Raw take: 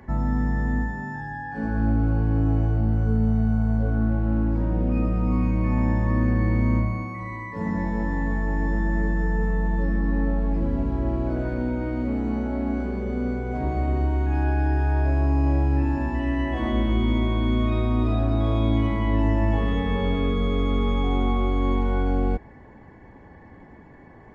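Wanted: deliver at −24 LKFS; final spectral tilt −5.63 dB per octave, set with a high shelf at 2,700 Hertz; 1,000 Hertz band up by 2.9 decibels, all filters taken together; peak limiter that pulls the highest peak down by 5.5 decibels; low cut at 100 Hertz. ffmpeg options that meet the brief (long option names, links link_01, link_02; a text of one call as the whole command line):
ffmpeg -i in.wav -af "highpass=100,equalizer=frequency=1000:width_type=o:gain=4,highshelf=frequency=2700:gain=-3.5,volume=3dB,alimiter=limit=-14dB:level=0:latency=1" out.wav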